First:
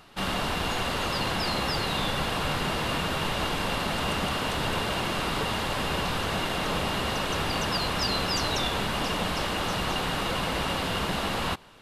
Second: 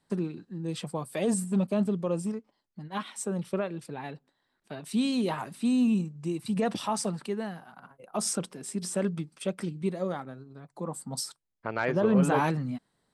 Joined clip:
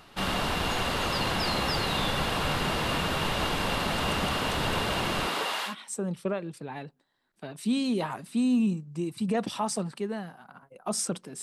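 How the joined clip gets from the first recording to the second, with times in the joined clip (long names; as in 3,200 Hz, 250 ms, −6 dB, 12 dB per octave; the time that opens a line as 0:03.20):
first
0:05.26–0:05.75: high-pass filter 240 Hz → 1,300 Hz
0:05.70: continue with second from 0:02.98, crossfade 0.10 s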